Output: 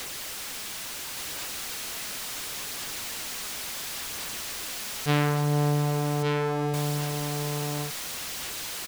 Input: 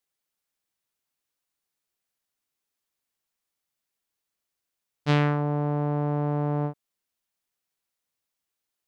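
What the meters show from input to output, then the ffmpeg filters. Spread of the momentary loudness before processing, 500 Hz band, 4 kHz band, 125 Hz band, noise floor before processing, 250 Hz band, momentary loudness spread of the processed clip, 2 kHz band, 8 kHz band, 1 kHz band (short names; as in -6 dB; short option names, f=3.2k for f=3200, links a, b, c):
7 LU, +2.0 dB, +13.5 dB, +1.0 dB, -85 dBFS, -0.5 dB, 9 LU, +6.0 dB, n/a, +2.0 dB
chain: -filter_complex "[0:a]aeval=exprs='val(0)+0.5*0.0473*sgn(val(0))':c=same,lowpass=f=3.5k:p=1,highshelf=f=2.6k:g=8.5,aphaser=in_gain=1:out_gain=1:delay=4.8:decay=0.26:speed=0.71:type=sinusoidal,asplit=2[a][b];[b]aecho=0:1:1167:0.596[c];[a][c]amix=inputs=2:normalize=0,volume=-3dB"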